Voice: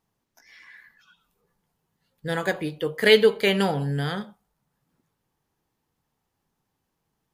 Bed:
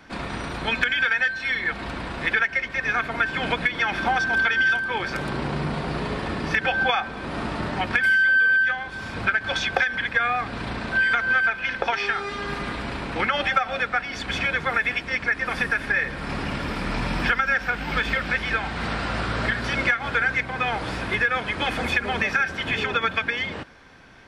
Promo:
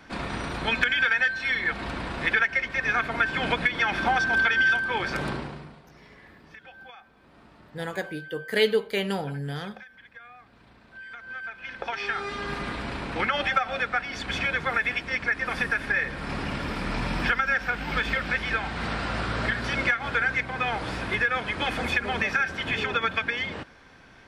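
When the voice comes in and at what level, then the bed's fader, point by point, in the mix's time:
5.50 s, -6.0 dB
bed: 5.29 s -1 dB
5.83 s -25 dB
10.88 s -25 dB
12.22 s -2.5 dB

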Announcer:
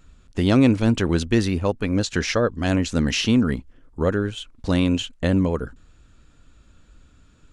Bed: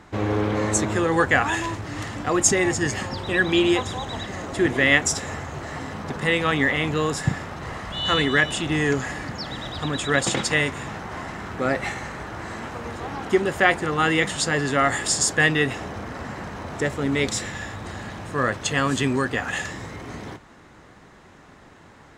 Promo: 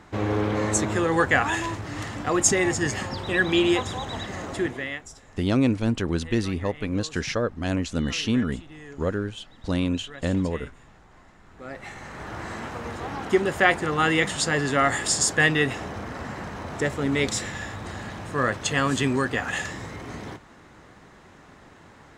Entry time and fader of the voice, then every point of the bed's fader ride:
5.00 s, -5.0 dB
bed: 4.52 s -1.5 dB
5.07 s -21.5 dB
11.42 s -21.5 dB
12.31 s -1 dB

